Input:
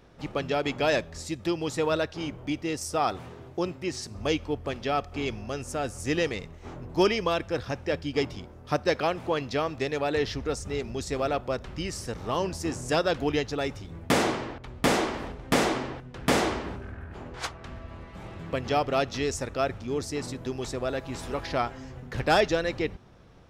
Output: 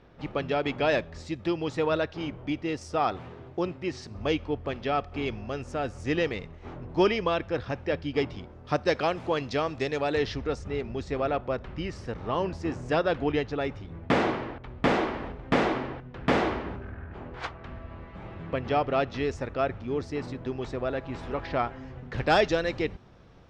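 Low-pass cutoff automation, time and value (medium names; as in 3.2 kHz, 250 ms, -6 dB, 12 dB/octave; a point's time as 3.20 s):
8.42 s 3.6 kHz
9.07 s 7 kHz
10.04 s 7 kHz
10.74 s 2.8 kHz
21.81 s 2.8 kHz
22.44 s 6 kHz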